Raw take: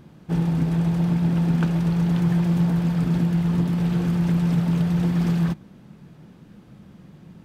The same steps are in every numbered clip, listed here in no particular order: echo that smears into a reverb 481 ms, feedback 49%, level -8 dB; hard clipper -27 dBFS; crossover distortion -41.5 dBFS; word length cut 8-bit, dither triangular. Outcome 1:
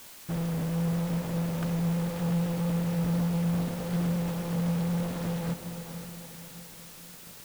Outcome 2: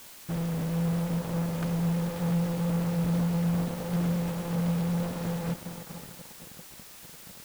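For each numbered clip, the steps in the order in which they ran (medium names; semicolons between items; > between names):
hard clipper > crossover distortion > echo that smears into a reverb > word length cut; hard clipper > echo that smears into a reverb > crossover distortion > word length cut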